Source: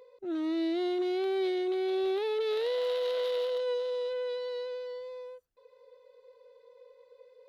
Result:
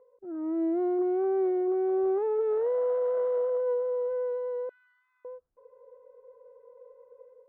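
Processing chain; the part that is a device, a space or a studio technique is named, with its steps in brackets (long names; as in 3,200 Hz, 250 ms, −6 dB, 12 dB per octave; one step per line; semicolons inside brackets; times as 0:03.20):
0:04.69–0:05.25: Butterworth high-pass 1,200 Hz 96 dB per octave
dynamic equaliser 3,000 Hz, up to −3 dB, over −50 dBFS, Q 1
action camera in a waterproof case (low-pass filter 1,300 Hz 24 dB per octave; automatic gain control gain up to 9 dB; level −5.5 dB; AAC 64 kbit/s 22,050 Hz)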